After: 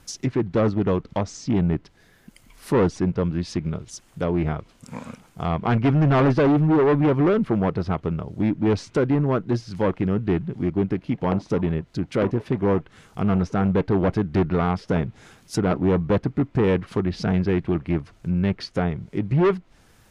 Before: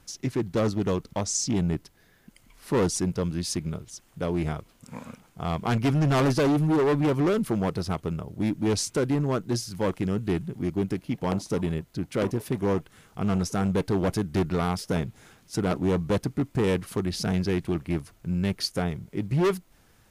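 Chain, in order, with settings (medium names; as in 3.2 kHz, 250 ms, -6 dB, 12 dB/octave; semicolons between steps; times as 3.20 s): low-pass that closes with the level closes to 2.4 kHz, closed at -25 dBFS; trim +4.5 dB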